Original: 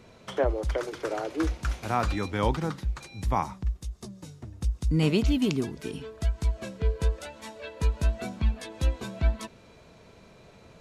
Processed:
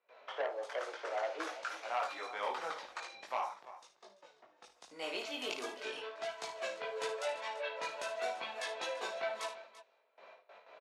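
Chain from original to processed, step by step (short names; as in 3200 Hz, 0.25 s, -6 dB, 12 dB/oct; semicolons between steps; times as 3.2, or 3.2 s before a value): low-pass opened by the level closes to 2700 Hz, open at -22.5 dBFS; gate with hold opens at -43 dBFS; in parallel at -0.5 dB: limiter -21 dBFS, peak gain reduction 9 dB; on the sum: Chebyshev high-pass 590 Hz, order 3; high shelf 5900 Hz -10 dB; vocal rider within 5 dB 0.5 s; chorus voices 6, 0.59 Hz, delay 20 ms, depth 4.2 ms; on a send: tapped delay 55/78/339 ms -9.5/-16/-16.5 dB; on the sum: core saturation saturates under 1600 Hz; gain -3 dB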